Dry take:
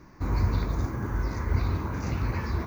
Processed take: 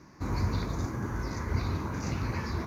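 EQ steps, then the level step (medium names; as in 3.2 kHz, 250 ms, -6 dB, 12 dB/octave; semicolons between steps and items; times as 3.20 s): high-pass 190 Hz 6 dB/octave; low-pass 11 kHz 12 dB/octave; tone controls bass +5 dB, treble +6 dB; -1.5 dB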